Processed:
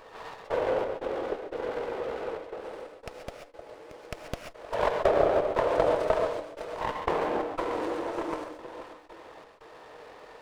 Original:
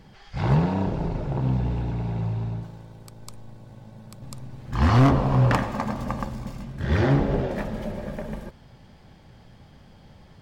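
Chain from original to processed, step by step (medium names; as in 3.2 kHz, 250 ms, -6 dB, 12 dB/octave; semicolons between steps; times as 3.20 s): high-pass 840 Hz 24 dB/octave; treble shelf 5.4 kHz -6.5 dB; in parallel at +1.5 dB: compression 12:1, threshold -44 dBFS, peak gain reduction 23 dB; on the sum: echo whose repeats swap between lows and highs 312 ms, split 1.5 kHz, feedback 51%, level -5.5 dB; trance gate "xx.xx.xx.xxx" 89 bpm -24 dB; pitch shift -10 st; gated-style reverb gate 160 ms rising, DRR 3.5 dB; sliding maximum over 9 samples; trim +6 dB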